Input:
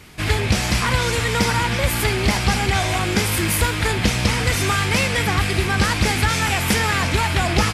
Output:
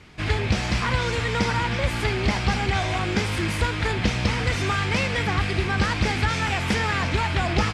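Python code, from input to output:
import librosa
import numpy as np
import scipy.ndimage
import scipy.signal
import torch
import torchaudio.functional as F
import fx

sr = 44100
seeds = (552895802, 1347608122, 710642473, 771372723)

y = fx.air_absorb(x, sr, metres=93.0)
y = y * 10.0 ** (-3.5 / 20.0)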